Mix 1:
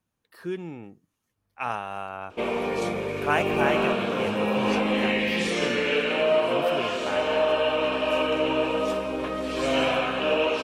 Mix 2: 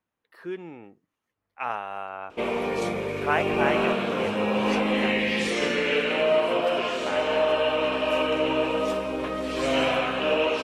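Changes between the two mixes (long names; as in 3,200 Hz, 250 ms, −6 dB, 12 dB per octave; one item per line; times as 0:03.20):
speech: add bass and treble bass −10 dB, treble −11 dB
master: remove notch filter 2,000 Hz, Q 18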